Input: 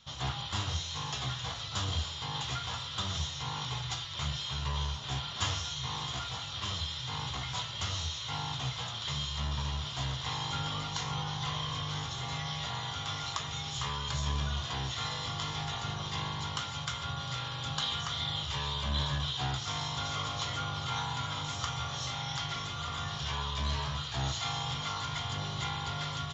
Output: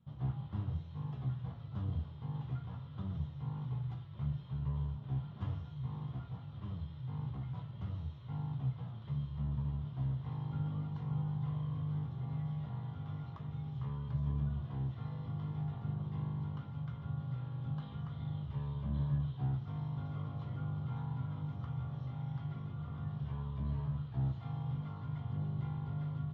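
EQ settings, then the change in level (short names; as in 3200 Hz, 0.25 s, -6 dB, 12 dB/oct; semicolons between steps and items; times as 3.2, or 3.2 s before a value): band-pass 160 Hz, Q 1.4; air absorption 210 m; +3.5 dB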